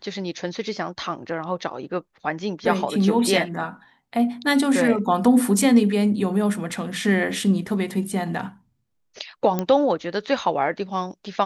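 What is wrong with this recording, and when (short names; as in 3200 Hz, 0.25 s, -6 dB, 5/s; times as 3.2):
9.59 pop -10 dBFS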